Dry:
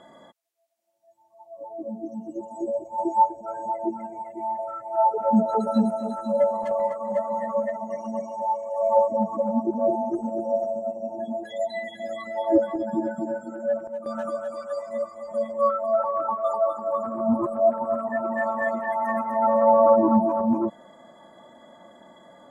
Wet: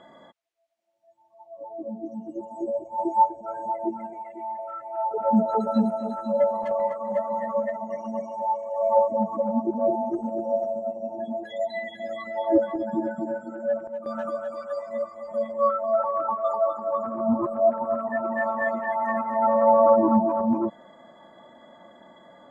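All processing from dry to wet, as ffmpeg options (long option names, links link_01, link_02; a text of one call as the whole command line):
ffmpeg -i in.wav -filter_complex "[0:a]asettb=1/sr,asplit=3[link_01][link_02][link_03];[link_01]atrim=end=4.134[link_04];[link_02]atrim=start=4.13:end=5.11,asetpts=PTS-STARTPTS,afade=type=in:duration=0.004:curve=qsin,afade=type=out:start_time=0.976:duration=0.004:curve=qsin,highpass=frequency=250:poles=1,equalizer=frequency=2600:width_type=o:width=1.2:gain=6,acompressor=threshold=-36dB:ratio=1.5:attack=3.2:release=140:knee=1:detection=peak[link_05];[link_03]atrim=start=5.106[link_06];[link_04][link_05]acrossfade=duration=0.004:curve1=hsin:curve2=qsin[link_07];[link_07][link_06]acrossfade=duration=0.004:curve1=qsin:curve2=hsin,lowpass=2700,aemphasis=mode=production:type=75fm" out.wav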